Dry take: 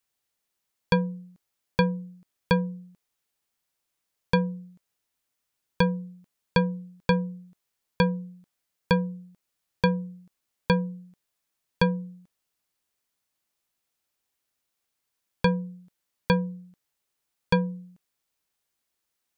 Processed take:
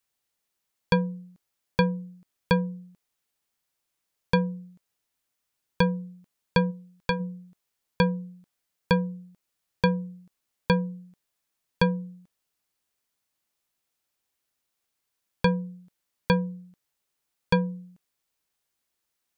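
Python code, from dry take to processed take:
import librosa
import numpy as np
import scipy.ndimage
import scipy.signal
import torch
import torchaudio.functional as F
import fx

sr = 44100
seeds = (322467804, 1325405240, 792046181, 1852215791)

y = fx.peak_eq(x, sr, hz=240.0, db=-7.5, octaves=2.4, at=(6.7, 7.19), fade=0.02)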